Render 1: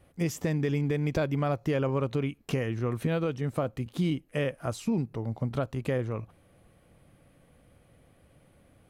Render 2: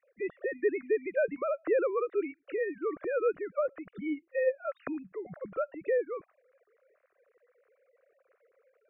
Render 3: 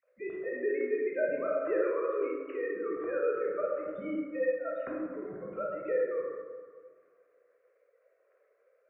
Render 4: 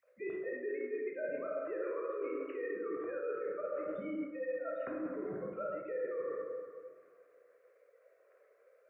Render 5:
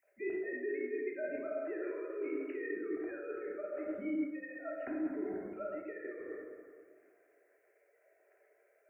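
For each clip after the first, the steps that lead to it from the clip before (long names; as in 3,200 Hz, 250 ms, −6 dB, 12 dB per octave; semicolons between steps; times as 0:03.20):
three sine waves on the formant tracks; phaser with its sweep stopped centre 880 Hz, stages 6
dense smooth reverb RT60 1.8 s, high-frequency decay 0.35×, DRR −3.5 dB; level −6 dB
high-pass filter 48 Hz; reversed playback; downward compressor 6 to 1, threshold −39 dBFS, peak gain reduction 14.5 dB; reversed playback; level +3 dB
parametric band 1,400 Hz −4.5 dB 0.52 octaves; phaser with its sweep stopped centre 760 Hz, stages 8; level +4.5 dB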